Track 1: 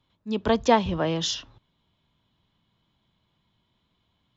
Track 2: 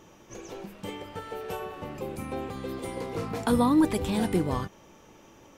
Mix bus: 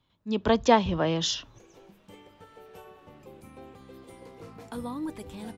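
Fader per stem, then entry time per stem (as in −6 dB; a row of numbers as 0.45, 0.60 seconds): −0.5, −13.0 decibels; 0.00, 1.25 seconds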